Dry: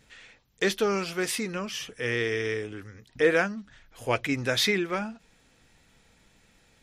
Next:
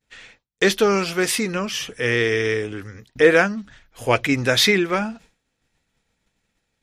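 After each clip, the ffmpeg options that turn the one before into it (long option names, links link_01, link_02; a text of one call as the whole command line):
ffmpeg -i in.wav -af "agate=range=-33dB:threshold=-48dB:ratio=3:detection=peak,volume=8dB" out.wav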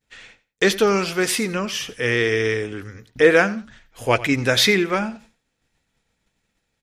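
ffmpeg -i in.wav -af "aecho=1:1:90|180:0.126|0.0277" out.wav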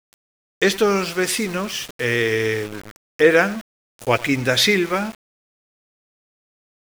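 ffmpeg -i in.wav -af "aeval=exprs='val(0)*gte(abs(val(0)),0.0299)':channel_layout=same" out.wav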